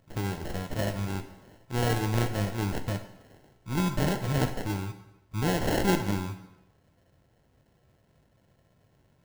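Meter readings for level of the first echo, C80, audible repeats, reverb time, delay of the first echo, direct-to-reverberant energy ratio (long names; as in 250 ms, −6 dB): no echo audible, 13.0 dB, no echo audible, 0.95 s, no echo audible, 7.5 dB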